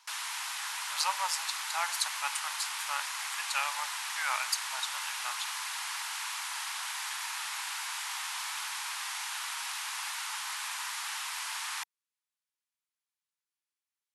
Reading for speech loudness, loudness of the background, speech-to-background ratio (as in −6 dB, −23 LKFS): −35.5 LKFS, −35.0 LKFS, −0.5 dB